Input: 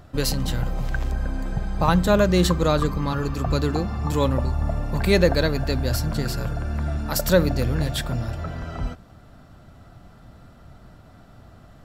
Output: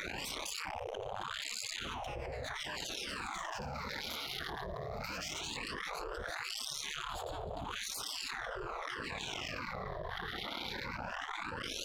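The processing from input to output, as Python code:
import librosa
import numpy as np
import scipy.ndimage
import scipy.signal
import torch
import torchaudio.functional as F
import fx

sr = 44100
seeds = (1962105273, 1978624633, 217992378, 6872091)

y = fx.hum_notches(x, sr, base_hz=50, count=3)
y = fx.echo_feedback(y, sr, ms=315, feedback_pct=51, wet_db=-22.5)
y = fx.fuzz(y, sr, gain_db=39.0, gate_db=-47.0)
y = fx.wah_lfo(y, sr, hz=0.78, low_hz=250.0, high_hz=1800.0, q=8.7)
y = fx.dynamic_eq(y, sr, hz=260.0, q=0.79, threshold_db=-40.0, ratio=4.0, max_db=3)
y = fx.phaser_stages(y, sr, stages=12, low_hz=130.0, high_hz=1900.0, hz=0.17, feedback_pct=45)
y = fx.bass_treble(y, sr, bass_db=3, treble_db=11, at=(3.08, 5.38), fade=0.02)
y = fx.spec_gate(y, sr, threshold_db=-25, keep='weak')
y = fx.env_flatten(y, sr, amount_pct=100)
y = y * librosa.db_to_amplitude(2.0)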